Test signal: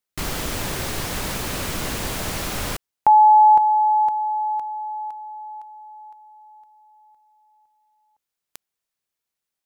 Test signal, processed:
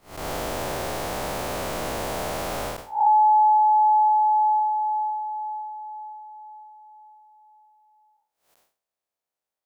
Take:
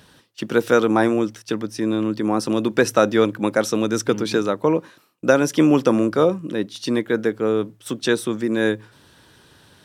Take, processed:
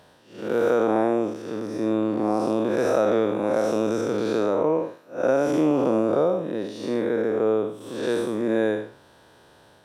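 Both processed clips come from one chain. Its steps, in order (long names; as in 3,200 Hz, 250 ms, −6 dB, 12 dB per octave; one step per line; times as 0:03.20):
spectrum smeared in time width 191 ms
parametric band 660 Hz +12.5 dB 1.6 octaves
downward compressor 6 to 1, threshold −11 dBFS
level −5 dB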